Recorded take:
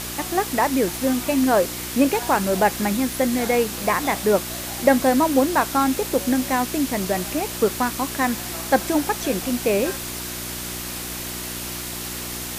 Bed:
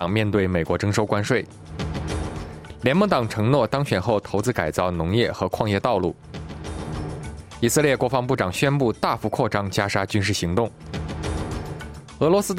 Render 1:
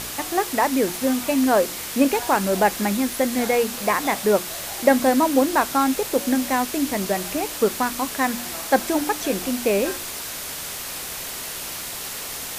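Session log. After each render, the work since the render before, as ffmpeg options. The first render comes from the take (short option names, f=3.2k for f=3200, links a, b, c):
-af "bandreject=f=60:t=h:w=4,bandreject=f=120:t=h:w=4,bandreject=f=180:t=h:w=4,bandreject=f=240:t=h:w=4,bandreject=f=300:t=h:w=4,bandreject=f=360:t=h:w=4"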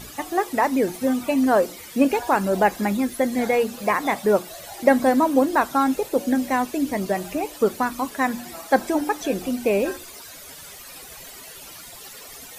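-af "afftdn=nr=14:nf=-32"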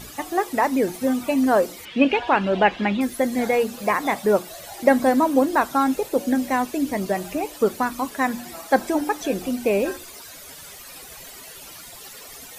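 -filter_complex "[0:a]asettb=1/sr,asplit=3[a][b][c];[a]atrim=end=1.854[d];[b]atrim=start=1.85:end=3.01,asetpts=PTS-STARTPTS,afade=t=in:d=0.004:c=qsin,afade=t=out:st=1.156:d=0.004:c=qsin,lowpass=f=3k:t=q:w=3.3[e];[c]atrim=start=3.006[f];[d][e]acrossfade=d=0.004:c1=hsin:c2=qsin[g];[g][f]acrossfade=d=0.004:c1=qsin:c2=hsin"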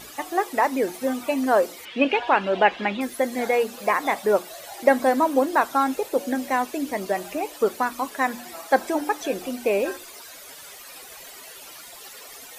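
-af "bass=f=250:g=-12,treble=f=4k:g=-2"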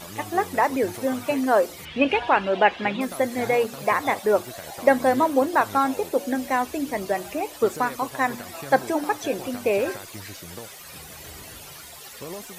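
-filter_complex "[1:a]volume=-19dB[a];[0:a][a]amix=inputs=2:normalize=0"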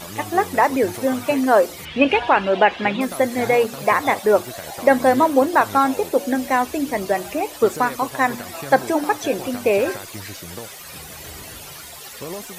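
-af "volume=4.5dB,alimiter=limit=-2dB:level=0:latency=1"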